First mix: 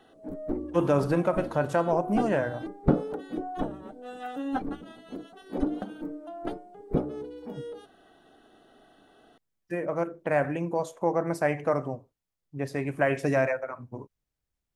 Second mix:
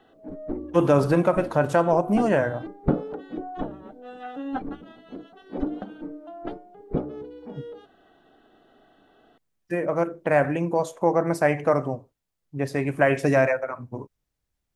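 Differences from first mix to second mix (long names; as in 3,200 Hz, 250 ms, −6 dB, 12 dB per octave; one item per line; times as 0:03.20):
speech +5.0 dB
background: add low-pass filter 3,800 Hz 12 dB per octave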